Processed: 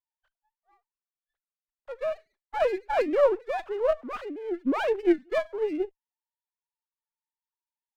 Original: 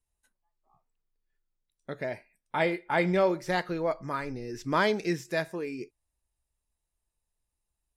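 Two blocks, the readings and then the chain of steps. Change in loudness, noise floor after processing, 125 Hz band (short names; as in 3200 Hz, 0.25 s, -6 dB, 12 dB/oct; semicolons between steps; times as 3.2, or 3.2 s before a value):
+2.0 dB, under -85 dBFS, under -20 dB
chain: sine-wave speech; high shelf 2300 Hz -11 dB; running maximum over 9 samples; gain +3.5 dB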